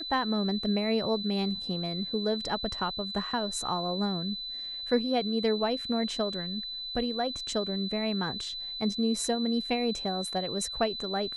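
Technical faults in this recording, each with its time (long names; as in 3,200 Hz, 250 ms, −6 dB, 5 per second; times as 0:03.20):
whistle 4,000 Hz −35 dBFS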